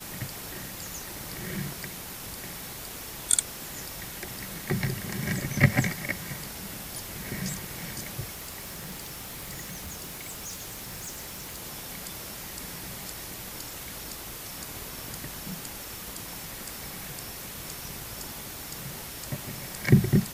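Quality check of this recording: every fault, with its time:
8.33–11.62 clipped -34 dBFS

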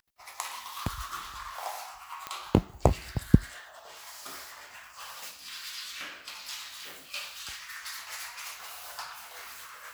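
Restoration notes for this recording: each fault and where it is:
2.27 pop -18 dBFS

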